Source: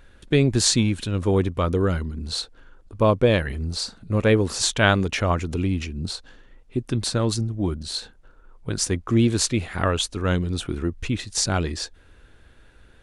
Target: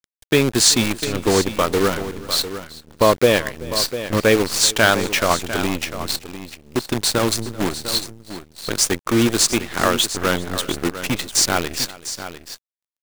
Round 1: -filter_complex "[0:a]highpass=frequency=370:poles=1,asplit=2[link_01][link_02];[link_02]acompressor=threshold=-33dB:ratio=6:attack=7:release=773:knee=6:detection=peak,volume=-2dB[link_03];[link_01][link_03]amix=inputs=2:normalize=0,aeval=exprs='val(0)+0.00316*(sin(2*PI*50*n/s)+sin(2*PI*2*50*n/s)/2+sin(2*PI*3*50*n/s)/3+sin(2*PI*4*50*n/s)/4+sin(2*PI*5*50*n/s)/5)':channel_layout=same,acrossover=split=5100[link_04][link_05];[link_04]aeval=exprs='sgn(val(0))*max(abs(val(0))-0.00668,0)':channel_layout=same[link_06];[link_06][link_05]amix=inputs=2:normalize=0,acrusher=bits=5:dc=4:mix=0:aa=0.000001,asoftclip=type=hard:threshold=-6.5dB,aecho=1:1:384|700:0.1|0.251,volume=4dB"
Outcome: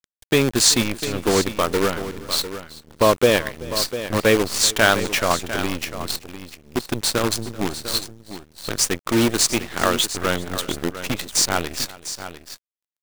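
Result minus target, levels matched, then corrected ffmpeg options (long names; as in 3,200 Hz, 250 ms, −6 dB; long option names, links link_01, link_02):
downward compressor: peak gain reduction +8.5 dB
-filter_complex "[0:a]highpass=frequency=370:poles=1,asplit=2[link_01][link_02];[link_02]acompressor=threshold=-23dB:ratio=6:attack=7:release=773:knee=6:detection=peak,volume=-2dB[link_03];[link_01][link_03]amix=inputs=2:normalize=0,aeval=exprs='val(0)+0.00316*(sin(2*PI*50*n/s)+sin(2*PI*2*50*n/s)/2+sin(2*PI*3*50*n/s)/3+sin(2*PI*4*50*n/s)/4+sin(2*PI*5*50*n/s)/5)':channel_layout=same,acrossover=split=5100[link_04][link_05];[link_04]aeval=exprs='sgn(val(0))*max(abs(val(0))-0.00668,0)':channel_layout=same[link_06];[link_06][link_05]amix=inputs=2:normalize=0,acrusher=bits=5:dc=4:mix=0:aa=0.000001,asoftclip=type=hard:threshold=-6.5dB,aecho=1:1:384|700:0.1|0.251,volume=4dB"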